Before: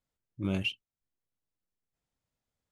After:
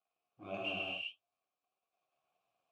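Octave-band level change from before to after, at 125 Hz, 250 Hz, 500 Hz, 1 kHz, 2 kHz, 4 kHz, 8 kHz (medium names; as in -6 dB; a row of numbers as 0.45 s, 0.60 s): -18.5 dB, -14.0 dB, -1.0 dB, +5.5 dB, -1.5 dB, -3.0 dB, under -10 dB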